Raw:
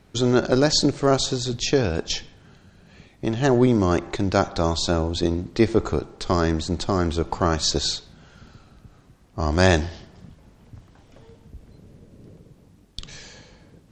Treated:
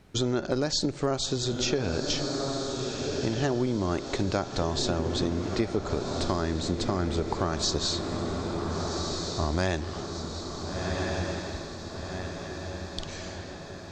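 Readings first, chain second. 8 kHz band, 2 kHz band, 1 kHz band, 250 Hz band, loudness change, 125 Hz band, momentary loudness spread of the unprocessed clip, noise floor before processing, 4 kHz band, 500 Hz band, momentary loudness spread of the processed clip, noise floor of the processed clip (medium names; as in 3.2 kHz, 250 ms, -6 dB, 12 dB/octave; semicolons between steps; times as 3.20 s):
-4.0 dB, -6.0 dB, -6.0 dB, -6.0 dB, -8.0 dB, -5.5 dB, 13 LU, -54 dBFS, -4.0 dB, -6.0 dB, 10 LU, -40 dBFS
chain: echo that smears into a reverb 1449 ms, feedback 57%, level -8.5 dB; compression 6:1, threshold -22 dBFS, peak gain reduction 10 dB; trim -1.5 dB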